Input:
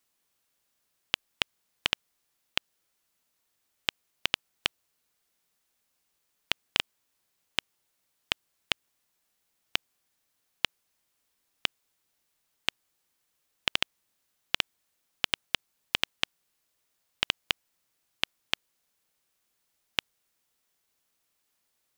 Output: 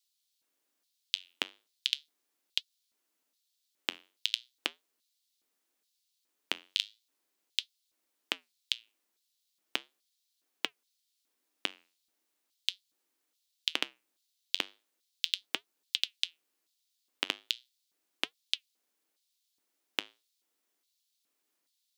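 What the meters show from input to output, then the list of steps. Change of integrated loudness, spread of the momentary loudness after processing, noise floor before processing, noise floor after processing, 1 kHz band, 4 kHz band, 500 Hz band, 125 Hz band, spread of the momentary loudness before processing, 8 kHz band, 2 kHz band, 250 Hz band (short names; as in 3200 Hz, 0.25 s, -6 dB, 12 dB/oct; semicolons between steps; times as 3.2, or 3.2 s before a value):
-3.0 dB, 5 LU, -77 dBFS, -81 dBFS, -7.0 dB, -2.5 dB, -4.5 dB, under -15 dB, 5 LU, -2.5 dB, -6.5 dB, -3.0 dB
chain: LFO high-pass square 1.2 Hz 300–3900 Hz; flange 0.38 Hz, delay 2.3 ms, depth 9.3 ms, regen -81%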